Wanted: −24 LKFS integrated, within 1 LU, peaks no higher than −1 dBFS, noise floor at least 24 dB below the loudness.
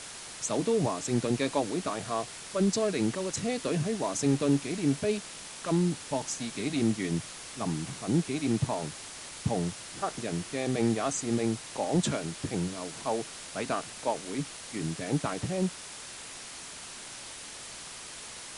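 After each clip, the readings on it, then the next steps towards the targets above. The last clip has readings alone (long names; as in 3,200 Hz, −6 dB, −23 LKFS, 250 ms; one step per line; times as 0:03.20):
background noise floor −44 dBFS; target noise floor −56 dBFS; integrated loudness −31.5 LKFS; sample peak −15.0 dBFS; target loudness −24.0 LKFS
→ broadband denoise 12 dB, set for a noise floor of −44 dBFS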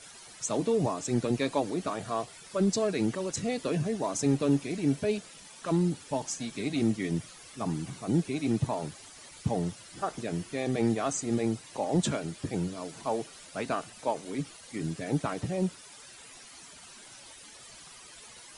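background noise floor −50 dBFS; target noise floor −55 dBFS
→ broadband denoise 6 dB, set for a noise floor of −50 dBFS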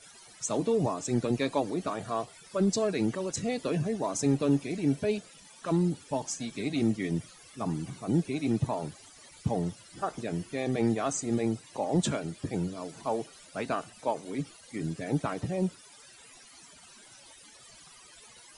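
background noise floor −54 dBFS; target noise floor −56 dBFS
→ broadband denoise 6 dB, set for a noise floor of −54 dBFS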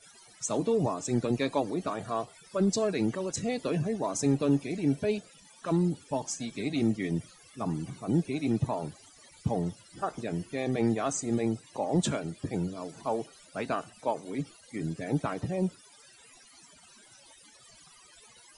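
background noise floor −57 dBFS; integrated loudness −31.5 LKFS; sample peak −15.0 dBFS; target loudness −24.0 LKFS
→ level +7.5 dB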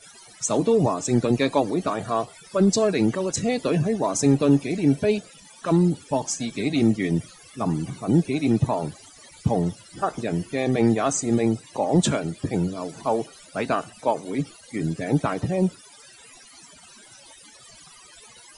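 integrated loudness −24.0 LKFS; sample peak −7.5 dBFS; background noise floor −49 dBFS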